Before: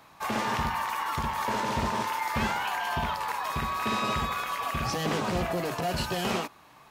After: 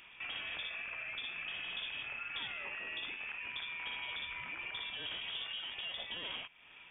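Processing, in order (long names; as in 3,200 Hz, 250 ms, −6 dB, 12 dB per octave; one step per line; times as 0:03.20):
downward compressor 2.5 to 1, threshold −44 dBFS, peak gain reduction 13 dB
voice inversion scrambler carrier 3,500 Hz
level −1.5 dB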